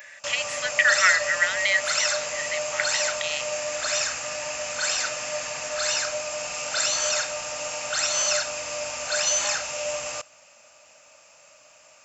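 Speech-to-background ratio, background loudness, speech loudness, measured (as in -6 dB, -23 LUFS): 1.0 dB, -25.5 LUFS, -24.5 LUFS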